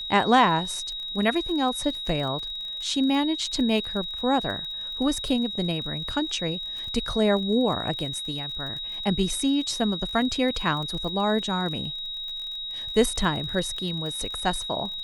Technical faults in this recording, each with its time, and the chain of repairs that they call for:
crackle 32 per s -33 dBFS
whine 3.8 kHz -31 dBFS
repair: de-click; band-stop 3.8 kHz, Q 30

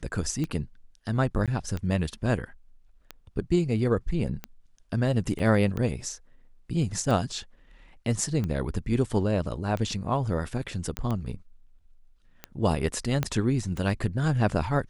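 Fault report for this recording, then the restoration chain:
tick 45 rpm -19 dBFS
1.46–1.48 s: dropout 17 ms
5.39–5.40 s: dropout 5.4 ms
10.97 s: pop -14 dBFS
13.23 s: pop -12 dBFS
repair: de-click; interpolate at 1.46 s, 17 ms; interpolate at 5.39 s, 5.4 ms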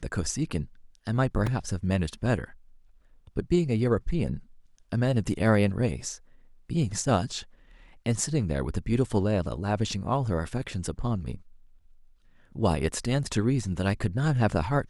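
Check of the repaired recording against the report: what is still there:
13.23 s: pop

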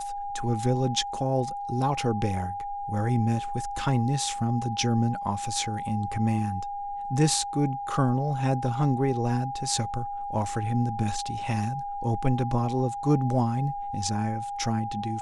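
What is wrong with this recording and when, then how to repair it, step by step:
whine 810 Hz -31 dBFS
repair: band-stop 810 Hz, Q 30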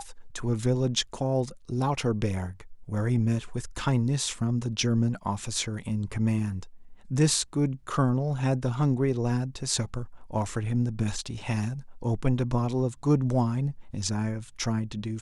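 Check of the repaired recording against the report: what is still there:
nothing left

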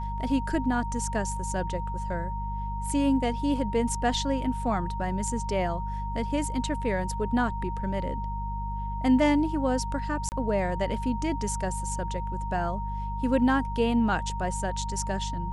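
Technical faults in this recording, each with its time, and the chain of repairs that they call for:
hum 50 Hz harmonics 4 -33 dBFS
whine 930 Hz -34 dBFS
10.29–10.32 s: dropout 29 ms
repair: band-stop 930 Hz, Q 30; de-hum 50 Hz, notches 4; interpolate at 10.29 s, 29 ms

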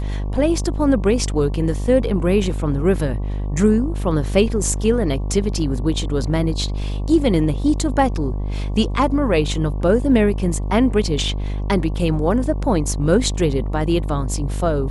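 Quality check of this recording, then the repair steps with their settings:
buzz 50 Hz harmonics 23 -23 dBFS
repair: de-hum 50 Hz, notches 23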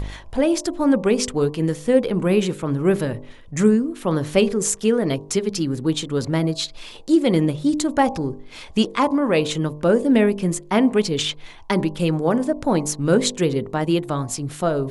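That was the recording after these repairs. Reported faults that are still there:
nothing left

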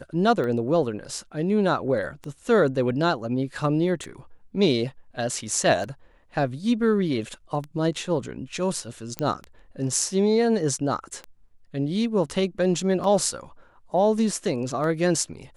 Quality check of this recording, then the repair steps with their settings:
tick 33 1/3 rpm -21 dBFS
9.19 s: pop -12 dBFS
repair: de-click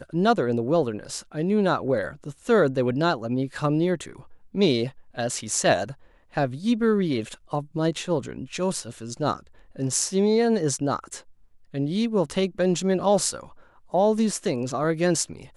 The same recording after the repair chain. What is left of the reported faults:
nothing left

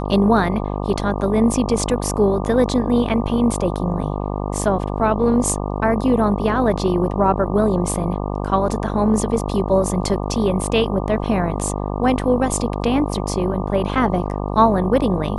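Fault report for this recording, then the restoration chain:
buzz 50 Hz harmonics 24 -24 dBFS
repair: de-hum 50 Hz, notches 24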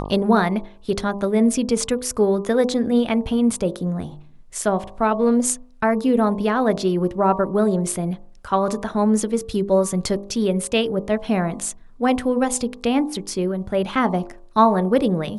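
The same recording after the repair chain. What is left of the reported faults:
nothing left

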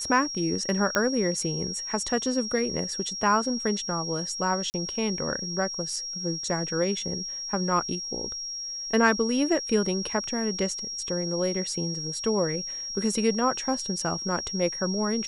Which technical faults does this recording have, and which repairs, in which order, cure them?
whine 5.6 kHz -32 dBFS
0.95 s: pop -9 dBFS
4.70–4.74 s: dropout 39 ms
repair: de-click; band-stop 5.6 kHz, Q 30; interpolate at 4.70 s, 39 ms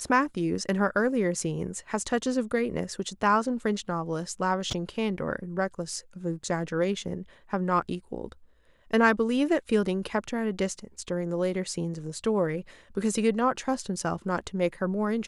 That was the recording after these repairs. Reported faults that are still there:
nothing left

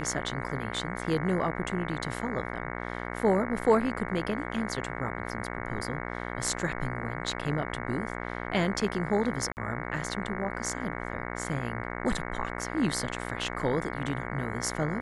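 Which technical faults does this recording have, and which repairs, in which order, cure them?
buzz 60 Hz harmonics 37 -36 dBFS
9.52–9.57 s: dropout 49 ms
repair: de-hum 60 Hz, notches 37; interpolate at 9.52 s, 49 ms

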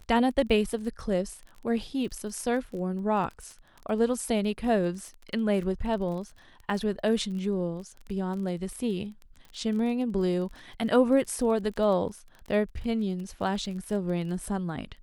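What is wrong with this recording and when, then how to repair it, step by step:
crackle 22 per s -36 dBFS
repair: de-click

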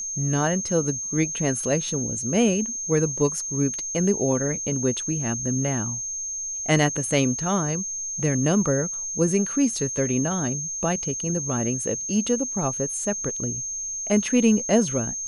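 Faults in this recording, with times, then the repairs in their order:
whine 6.4 kHz -28 dBFS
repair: band-stop 6.4 kHz, Q 30

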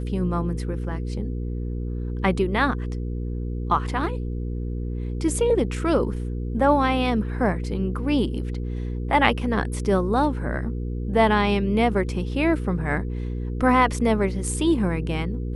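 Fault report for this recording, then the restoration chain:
hum 60 Hz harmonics 8 -28 dBFS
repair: de-hum 60 Hz, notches 8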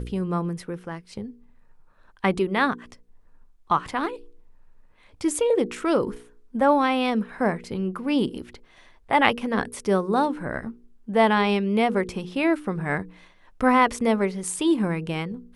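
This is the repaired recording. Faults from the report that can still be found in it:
nothing left

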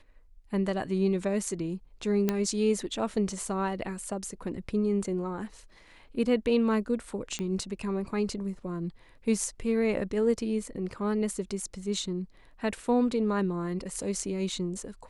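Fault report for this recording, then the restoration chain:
2.29 s: pop -12 dBFS
7.39 s: pop -20 dBFS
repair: de-click

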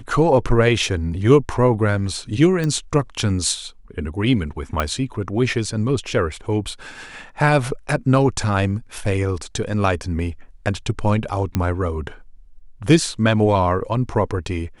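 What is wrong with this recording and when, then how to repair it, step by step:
2.64 s: pop -12 dBFS
4.80 s: pop -7 dBFS
11.55 s: pop -8 dBFS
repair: de-click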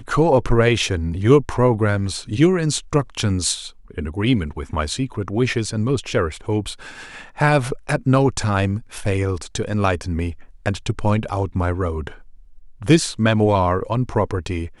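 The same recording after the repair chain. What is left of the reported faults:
nothing left

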